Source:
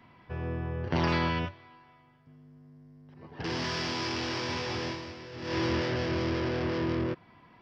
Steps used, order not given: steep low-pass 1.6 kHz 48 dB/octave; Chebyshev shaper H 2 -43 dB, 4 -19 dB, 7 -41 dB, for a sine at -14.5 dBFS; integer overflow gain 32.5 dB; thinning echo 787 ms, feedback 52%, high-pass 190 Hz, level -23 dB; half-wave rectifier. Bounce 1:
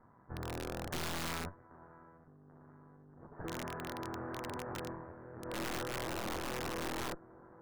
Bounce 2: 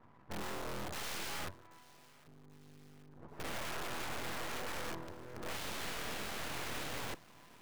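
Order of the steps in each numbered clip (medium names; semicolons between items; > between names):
thinning echo > half-wave rectifier > Chebyshev shaper > steep low-pass > integer overflow; steep low-pass > Chebyshev shaper > integer overflow > thinning echo > half-wave rectifier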